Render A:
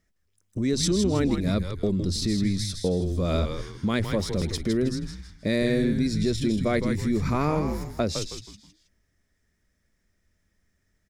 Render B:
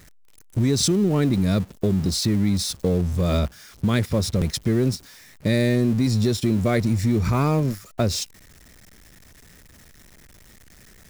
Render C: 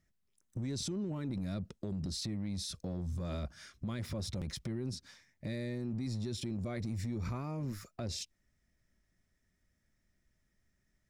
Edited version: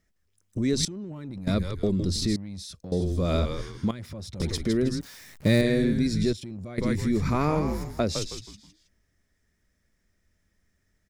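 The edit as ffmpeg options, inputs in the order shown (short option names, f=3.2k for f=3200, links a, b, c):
-filter_complex "[2:a]asplit=4[a][b][c][d];[0:a]asplit=6[e][f][g][h][i][j];[e]atrim=end=0.852[k];[a]atrim=start=0.848:end=1.472[l];[f]atrim=start=1.468:end=2.362[m];[b]atrim=start=2.358:end=2.922[n];[g]atrim=start=2.918:end=3.912[o];[c]atrim=start=3.908:end=4.402[p];[h]atrim=start=4.398:end=5.012[q];[1:a]atrim=start=5.008:end=5.612[r];[i]atrim=start=5.608:end=6.332[s];[d]atrim=start=6.328:end=6.782[t];[j]atrim=start=6.778[u];[k][l]acrossfade=d=0.004:c1=hsin:c2=hsin[v];[v][m]acrossfade=d=0.004:c1=hsin:c2=hsin[w];[w][n]acrossfade=d=0.004:c1=hsin:c2=hsin[x];[x][o]acrossfade=d=0.004:c1=hsin:c2=hsin[y];[y][p]acrossfade=d=0.004:c1=hsin:c2=hsin[z];[z][q]acrossfade=d=0.004:c1=hsin:c2=hsin[aa];[aa][r]acrossfade=d=0.004:c1=hsin:c2=hsin[ab];[ab][s]acrossfade=d=0.004:c1=hsin:c2=hsin[ac];[ac][t]acrossfade=d=0.004:c1=hsin:c2=hsin[ad];[ad][u]acrossfade=d=0.004:c1=hsin:c2=hsin"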